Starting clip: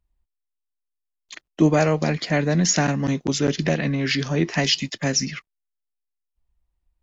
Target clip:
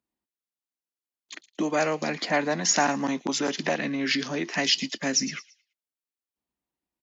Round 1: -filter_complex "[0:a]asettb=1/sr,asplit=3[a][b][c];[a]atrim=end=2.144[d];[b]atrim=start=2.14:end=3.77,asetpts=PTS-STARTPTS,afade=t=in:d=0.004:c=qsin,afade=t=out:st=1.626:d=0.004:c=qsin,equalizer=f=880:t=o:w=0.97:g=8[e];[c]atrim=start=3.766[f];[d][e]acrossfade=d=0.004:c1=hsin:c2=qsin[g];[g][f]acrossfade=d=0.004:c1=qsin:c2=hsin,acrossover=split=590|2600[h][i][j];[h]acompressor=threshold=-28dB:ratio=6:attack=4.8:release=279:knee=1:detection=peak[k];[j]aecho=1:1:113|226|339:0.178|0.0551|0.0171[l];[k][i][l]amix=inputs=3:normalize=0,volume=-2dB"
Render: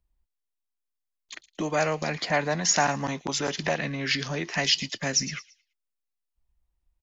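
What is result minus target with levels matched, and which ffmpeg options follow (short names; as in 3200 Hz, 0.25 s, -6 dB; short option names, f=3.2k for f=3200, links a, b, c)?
250 Hz band -4.0 dB
-filter_complex "[0:a]asettb=1/sr,asplit=3[a][b][c];[a]atrim=end=2.144[d];[b]atrim=start=2.14:end=3.77,asetpts=PTS-STARTPTS,afade=t=in:d=0.004:c=qsin,afade=t=out:st=1.626:d=0.004:c=qsin,equalizer=f=880:t=o:w=0.97:g=8[e];[c]atrim=start=3.766[f];[d][e]acrossfade=d=0.004:c1=hsin:c2=qsin[g];[g][f]acrossfade=d=0.004:c1=qsin:c2=hsin,acrossover=split=590|2600[h][i][j];[h]acompressor=threshold=-28dB:ratio=6:attack=4.8:release=279:knee=1:detection=peak,highpass=f=250:t=q:w=2.2[k];[j]aecho=1:1:113|226|339:0.178|0.0551|0.0171[l];[k][i][l]amix=inputs=3:normalize=0,volume=-2dB"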